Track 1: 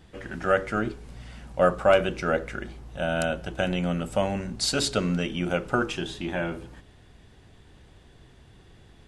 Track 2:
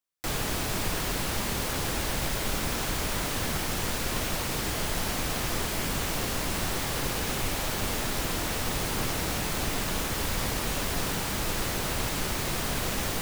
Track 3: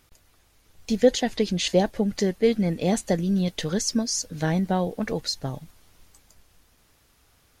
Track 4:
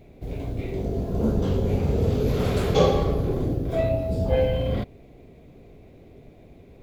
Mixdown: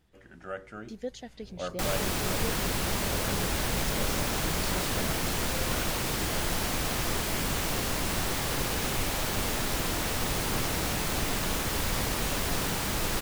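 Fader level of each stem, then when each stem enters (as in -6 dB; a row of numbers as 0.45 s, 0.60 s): -15.5 dB, 0.0 dB, -18.5 dB, -19.5 dB; 0.00 s, 1.55 s, 0.00 s, 1.20 s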